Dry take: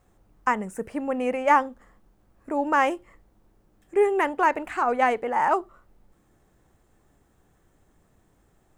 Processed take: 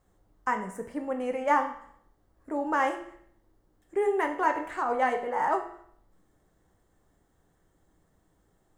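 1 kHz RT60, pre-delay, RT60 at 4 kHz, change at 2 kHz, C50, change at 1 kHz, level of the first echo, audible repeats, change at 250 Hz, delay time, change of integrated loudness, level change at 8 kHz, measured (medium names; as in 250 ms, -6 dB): 0.65 s, 6 ms, 0.60 s, -5.0 dB, 9.5 dB, -4.5 dB, no echo, no echo, -4.5 dB, no echo, -5.0 dB, no reading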